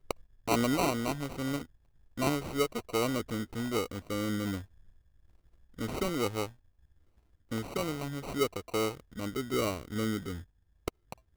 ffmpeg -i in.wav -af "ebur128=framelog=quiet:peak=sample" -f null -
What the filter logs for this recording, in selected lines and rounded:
Integrated loudness:
  I:         -33.5 LUFS
  Threshold: -44.4 LUFS
Loudness range:
  LRA:         5.3 LU
  Threshold: -54.8 LUFS
  LRA low:   -37.5 LUFS
  LRA high:  -32.2 LUFS
Sample peak:
  Peak:      -15.4 dBFS